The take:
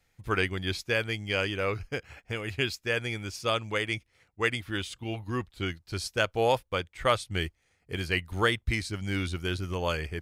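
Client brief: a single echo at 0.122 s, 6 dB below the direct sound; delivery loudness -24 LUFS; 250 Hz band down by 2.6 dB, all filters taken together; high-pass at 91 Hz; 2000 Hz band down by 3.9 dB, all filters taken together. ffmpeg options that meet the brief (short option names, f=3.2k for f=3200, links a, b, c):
-af "highpass=91,equalizer=f=250:t=o:g=-3.5,equalizer=f=2k:t=o:g=-5,aecho=1:1:122:0.501,volume=7.5dB"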